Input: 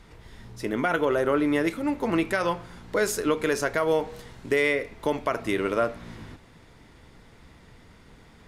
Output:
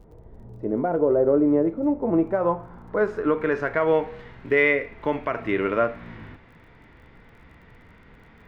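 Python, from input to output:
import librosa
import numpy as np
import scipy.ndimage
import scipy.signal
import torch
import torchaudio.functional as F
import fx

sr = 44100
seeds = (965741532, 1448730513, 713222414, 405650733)

y = fx.filter_sweep_lowpass(x, sr, from_hz=610.0, to_hz=2200.0, start_s=1.98, end_s=3.95, q=1.4)
y = fx.hpss(y, sr, part='harmonic', gain_db=6)
y = fx.dmg_crackle(y, sr, seeds[0], per_s=27.0, level_db=-47.0)
y = y * 10.0 ** (-3.0 / 20.0)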